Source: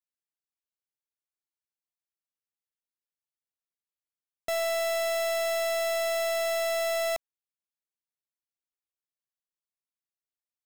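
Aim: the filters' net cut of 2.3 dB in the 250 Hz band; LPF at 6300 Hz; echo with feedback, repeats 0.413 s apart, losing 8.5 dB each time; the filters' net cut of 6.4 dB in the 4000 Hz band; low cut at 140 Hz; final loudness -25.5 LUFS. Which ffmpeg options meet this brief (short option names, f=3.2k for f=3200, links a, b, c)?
-af "highpass=140,lowpass=6.3k,equalizer=f=250:t=o:g=-3,equalizer=f=4k:t=o:g=-7,aecho=1:1:413|826|1239|1652:0.376|0.143|0.0543|0.0206,volume=3.5dB"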